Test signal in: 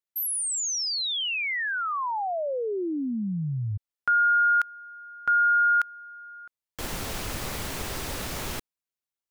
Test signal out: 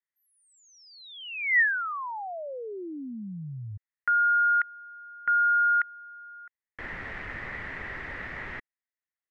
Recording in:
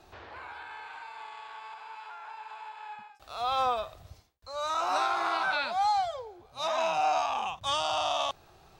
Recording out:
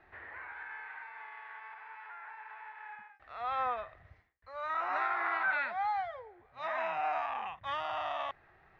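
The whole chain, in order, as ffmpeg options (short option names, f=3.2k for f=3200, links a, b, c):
-af "lowpass=f=1.9k:t=q:w=8.1,volume=-8.5dB"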